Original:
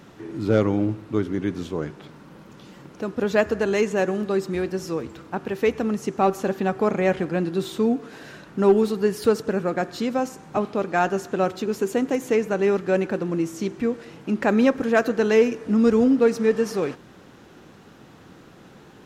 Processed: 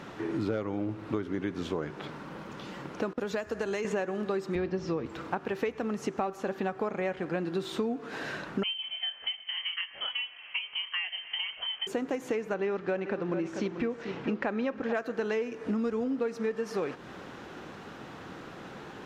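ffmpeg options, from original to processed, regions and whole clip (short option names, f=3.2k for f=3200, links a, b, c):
-filter_complex "[0:a]asettb=1/sr,asplit=3[a][b][c];[a]atrim=end=3.134[d];[b]atrim=start=3.13:end=3.85,asetpts=PTS-STARTPTS,afade=t=in:d=0.004:c=qsin,afade=t=out:st=0.716:d=0.004:c=qsin,agate=range=-33dB:threshold=-34dB:ratio=3:release=100:detection=peak,acrossover=split=100|5000[e][f][g];[e]acompressor=threshold=-54dB:ratio=4[h];[f]acompressor=threshold=-30dB:ratio=4[i];[g]acompressor=threshold=-45dB:ratio=4[j];[h][i][j]amix=inputs=3:normalize=0[k];[c]atrim=start=3.846[l];[d][k]acrossfade=d=0.004:c1=hsin:c2=qsin[m];[m][l]acrossfade=d=0.004:c1=qsin:c2=hsin,asettb=1/sr,asplit=3[n][o][p];[n]atrim=end=4.554[q];[o]atrim=start=4.55:end=5.06,asetpts=PTS-STARTPTS,afade=t=in:d=0.004:c=qsin,afade=t=out:st=0.506:d=0.004:c=qsin,lowpass=f=5.6k:w=0.5412,lowpass=f=5.6k:w=1.3066,lowshelf=f=260:g=9.5,bandreject=f=1.5k:w=21[r];[p]atrim=start=5.056[s];[q][r]acrossfade=d=0.004:c1=hsin:c2=qsin[t];[t][s]acrossfade=d=0.004:c1=qsin:c2=hsin,asettb=1/sr,asplit=3[u][v][w];[u]atrim=end=8.634[x];[v]atrim=start=8.63:end=11.87,asetpts=PTS-STARTPTS,afade=t=in:d=0.004:c=qsin,afade=t=out:st=3.236:d=0.004:c=qsin,highpass=f=390:w=0.5412,highpass=f=390:w=1.3066,flanger=delay=20:depth=5.6:speed=1.5,lowpass=f=3k:t=q:w=0.5098,lowpass=f=3k:t=q:w=0.6013,lowpass=f=3k:t=q:w=0.9,lowpass=f=3k:t=q:w=2.563,afreqshift=-3500[y];[w]atrim=start=11.866[z];[x][y]acrossfade=d=0.004:c1=hsin:c2=qsin[aa];[aa][z]acrossfade=d=0.004:c1=qsin:c2=hsin,asettb=1/sr,asplit=3[ab][ac][ad];[ab]atrim=end=12.544[ae];[ac]atrim=start=12.54:end=14.93,asetpts=PTS-STARTPTS,afade=t=in:d=0.004:c=qsin,afade=t=out:st=2.386:d=0.004:c=qsin,lowpass=5k,aecho=1:1:439:0.237,atrim=end_sample=105399[af];[ad]atrim=start=14.926[ag];[ae][af]acrossfade=d=0.004:c1=hsin:c2=qsin[ah];[ah][ag]acrossfade=d=0.004:c1=qsin:c2=hsin,lowshelf=f=430:g=-9,acompressor=threshold=-36dB:ratio=12,lowpass=f=2.5k:p=1,volume=8.5dB"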